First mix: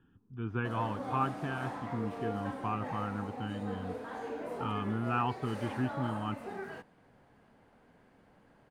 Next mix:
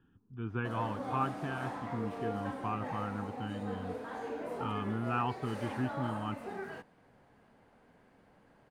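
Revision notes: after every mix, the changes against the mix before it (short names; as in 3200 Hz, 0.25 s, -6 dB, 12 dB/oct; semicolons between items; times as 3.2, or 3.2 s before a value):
speech: send -6.0 dB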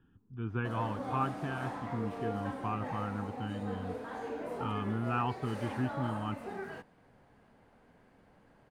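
master: add low shelf 98 Hz +5 dB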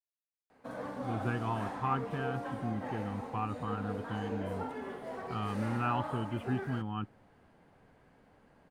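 speech: entry +0.70 s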